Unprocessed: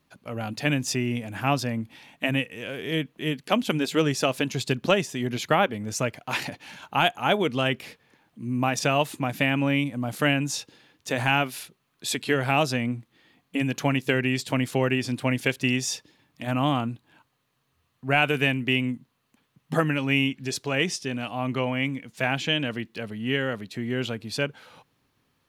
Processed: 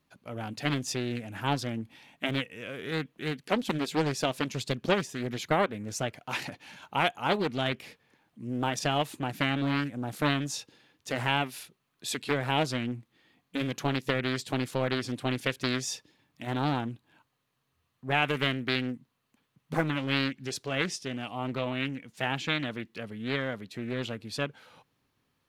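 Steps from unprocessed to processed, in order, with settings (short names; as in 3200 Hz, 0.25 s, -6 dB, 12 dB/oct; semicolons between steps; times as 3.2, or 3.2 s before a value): Doppler distortion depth 0.62 ms; gain -5 dB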